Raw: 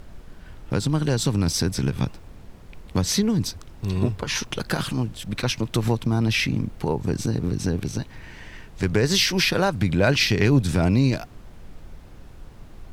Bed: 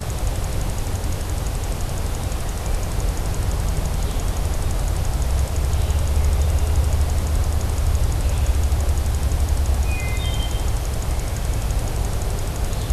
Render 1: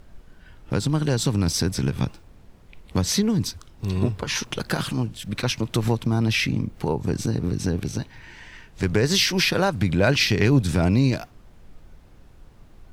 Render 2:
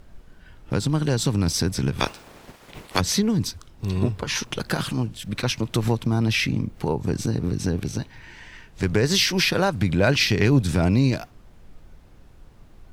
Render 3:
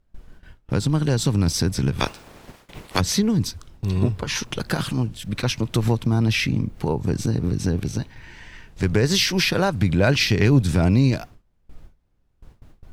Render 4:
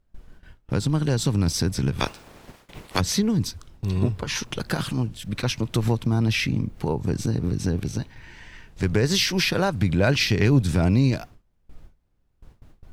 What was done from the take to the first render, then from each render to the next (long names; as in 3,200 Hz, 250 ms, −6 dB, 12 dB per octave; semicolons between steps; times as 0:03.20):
noise reduction from a noise print 6 dB
0:01.99–0:02.99: ceiling on every frequency bin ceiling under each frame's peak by 27 dB
noise gate with hold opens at −36 dBFS; low-shelf EQ 170 Hz +4 dB
level −2 dB